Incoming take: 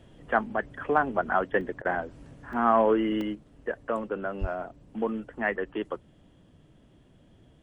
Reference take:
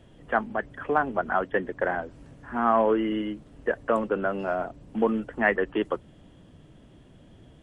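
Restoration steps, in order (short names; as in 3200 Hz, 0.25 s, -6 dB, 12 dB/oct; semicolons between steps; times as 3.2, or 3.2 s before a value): 4.4–4.52 HPF 140 Hz 24 dB/oct; interpolate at 1.61/2.53/3.21, 2.7 ms; interpolate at 1.82, 28 ms; 3.35 gain correction +5.5 dB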